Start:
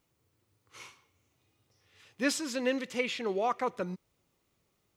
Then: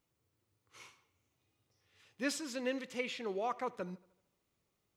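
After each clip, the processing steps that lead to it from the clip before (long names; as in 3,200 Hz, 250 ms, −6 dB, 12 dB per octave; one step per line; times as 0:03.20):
tape delay 74 ms, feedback 57%, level −20.5 dB, low-pass 5,900 Hz
level −6.5 dB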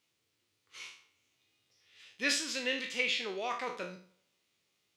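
peak hold with a decay on every bin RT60 0.43 s
meter weighting curve D
level −1.5 dB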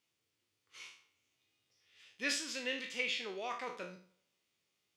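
notch filter 4,000 Hz, Q 20
level −4.5 dB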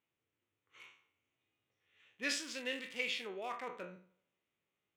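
adaptive Wiener filter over 9 samples
level −1 dB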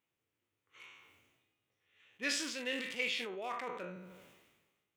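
level that may fall only so fast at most 42 dB per second
level +1 dB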